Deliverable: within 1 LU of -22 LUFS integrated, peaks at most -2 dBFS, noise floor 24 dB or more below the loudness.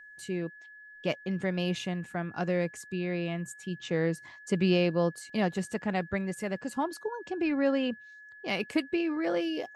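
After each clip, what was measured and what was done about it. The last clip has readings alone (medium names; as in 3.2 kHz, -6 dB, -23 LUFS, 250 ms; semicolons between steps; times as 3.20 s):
steady tone 1.7 kHz; tone level -48 dBFS; loudness -31.5 LUFS; peak level -14.5 dBFS; loudness target -22.0 LUFS
-> band-stop 1.7 kHz, Q 30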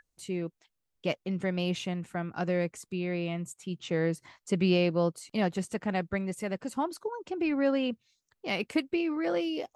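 steady tone not found; loudness -31.5 LUFS; peak level -14.5 dBFS; loudness target -22.0 LUFS
-> trim +9.5 dB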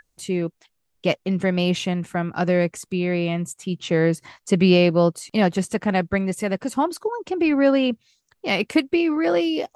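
loudness -22.0 LUFS; peak level -5.0 dBFS; noise floor -72 dBFS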